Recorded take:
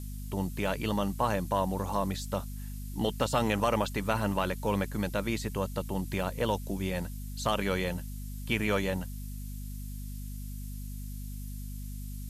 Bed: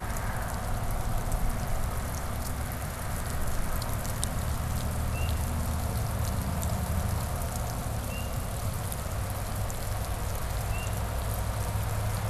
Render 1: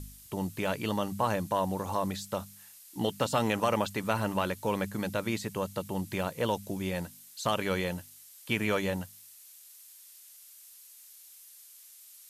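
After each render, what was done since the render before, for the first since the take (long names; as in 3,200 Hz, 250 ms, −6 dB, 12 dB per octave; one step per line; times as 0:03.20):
hum removal 50 Hz, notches 5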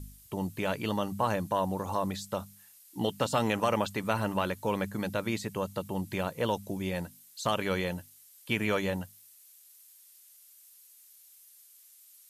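broadband denoise 6 dB, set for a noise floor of −53 dBFS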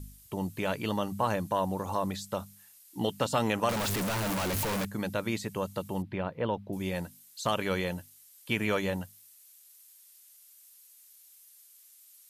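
0:03.69–0:04.85: sign of each sample alone
0:06.02–0:06.73: high-frequency loss of the air 380 metres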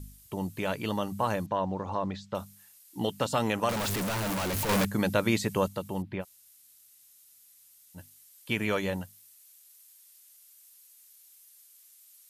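0:01.46–0:02.35: high-frequency loss of the air 160 metres
0:04.69–0:05.68: clip gain +6 dB
0:06.22–0:07.97: fill with room tone, crossfade 0.06 s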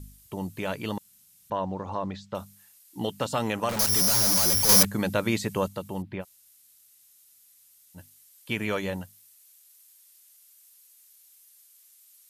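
0:00.98–0:01.50: fill with room tone
0:03.79–0:04.83: bad sample-rate conversion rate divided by 8×, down filtered, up zero stuff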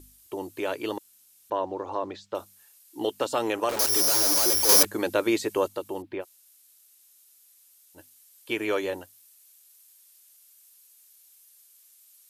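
low shelf with overshoot 250 Hz −10 dB, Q 3
notch filter 2,000 Hz, Q 25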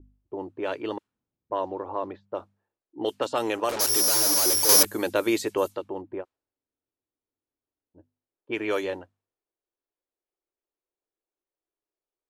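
low-pass that shuts in the quiet parts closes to 370 Hz, open at −21 dBFS
high-shelf EQ 11,000 Hz +5 dB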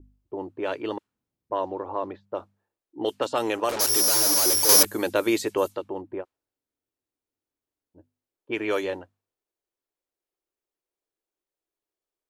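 level +1 dB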